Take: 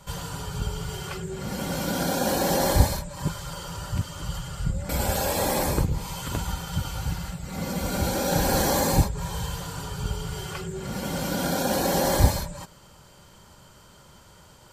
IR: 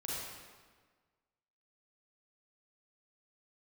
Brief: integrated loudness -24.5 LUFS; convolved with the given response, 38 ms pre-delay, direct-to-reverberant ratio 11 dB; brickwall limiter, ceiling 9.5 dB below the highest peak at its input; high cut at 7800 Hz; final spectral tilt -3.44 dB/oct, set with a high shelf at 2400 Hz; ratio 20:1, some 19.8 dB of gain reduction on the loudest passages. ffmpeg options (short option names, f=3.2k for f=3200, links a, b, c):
-filter_complex "[0:a]lowpass=7.8k,highshelf=f=2.4k:g=8,acompressor=threshold=-31dB:ratio=20,alimiter=level_in=4.5dB:limit=-24dB:level=0:latency=1,volume=-4.5dB,asplit=2[a][b];[1:a]atrim=start_sample=2205,adelay=38[c];[b][c]afir=irnorm=-1:irlink=0,volume=-13dB[d];[a][d]amix=inputs=2:normalize=0,volume=13dB"